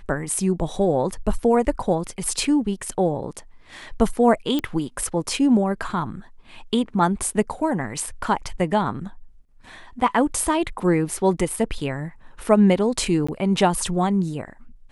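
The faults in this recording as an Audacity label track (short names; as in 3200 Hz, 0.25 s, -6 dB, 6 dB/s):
4.590000	4.590000	pop -12 dBFS
13.270000	13.290000	gap 15 ms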